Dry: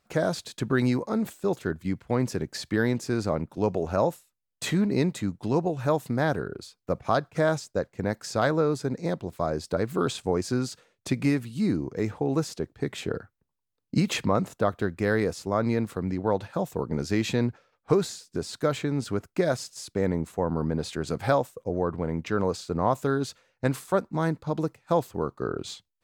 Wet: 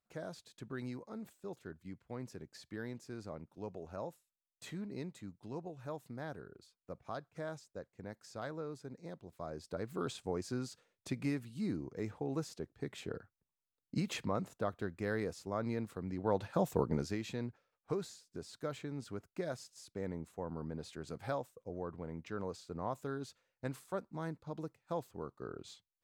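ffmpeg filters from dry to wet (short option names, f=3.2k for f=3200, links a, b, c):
-af "volume=-2dB,afade=t=in:st=9.2:d=0.91:silence=0.446684,afade=t=in:st=16.1:d=0.68:silence=0.316228,afade=t=out:st=16.78:d=0.4:silence=0.223872"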